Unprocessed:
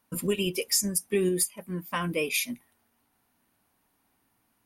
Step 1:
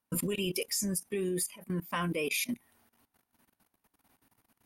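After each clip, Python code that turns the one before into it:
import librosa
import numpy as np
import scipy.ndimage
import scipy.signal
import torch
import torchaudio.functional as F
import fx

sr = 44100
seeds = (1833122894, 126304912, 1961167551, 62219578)

y = fx.level_steps(x, sr, step_db=18)
y = F.gain(torch.from_numpy(y), 4.5).numpy()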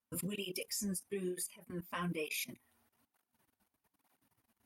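y = fx.flanger_cancel(x, sr, hz=1.1, depth_ms=7.5)
y = F.gain(torch.from_numpy(y), -4.0).numpy()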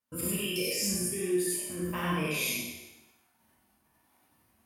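y = fx.spec_trails(x, sr, decay_s=1.02)
y = fx.rev_gated(y, sr, seeds[0], gate_ms=120, shape='rising', drr_db=-4.0)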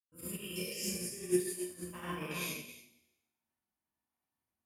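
y = x + 10.0 ** (-5.5 / 20.0) * np.pad(x, (int(276 * sr / 1000.0), 0))[:len(x)]
y = fx.upward_expand(y, sr, threshold_db=-40.0, expansion=2.5)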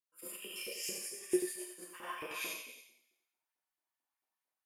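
y = fx.filter_lfo_highpass(x, sr, shape='saw_up', hz=4.5, low_hz=340.0, high_hz=2100.0, q=1.4)
y = y + 10.0 ** (-8.0 / 20.0) * np.pad(y, (int(89 * sr / 1000.0), 0))[:len(y)]
y = F.gain(torch.from_numpy(y), -2.5).numpy()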